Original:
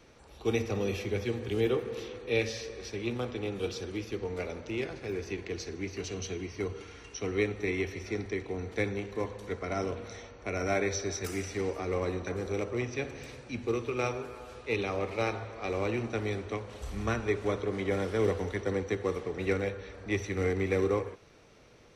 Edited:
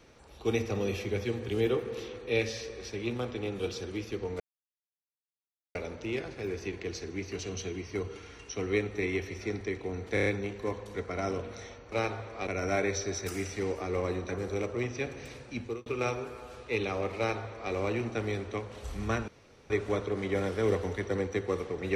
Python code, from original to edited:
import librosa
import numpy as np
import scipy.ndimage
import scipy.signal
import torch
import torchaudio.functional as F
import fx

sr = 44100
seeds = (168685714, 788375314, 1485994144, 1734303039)

y = fx.edit(x, sr, fx.insert_silence(at_s=4.4, length_s=1.35),
    fx.stutter(start_s=8.79, slice_s=0.03, count=5),
    fx.fade_out_span(start_s=13.58, length_s=0.26),
    fx.duplicate(start_s=15.15, length_s=0.55, to_s=10.45),
    fx.insert_room_tone(at_s=17.26, length_s=0.42), tone=tone)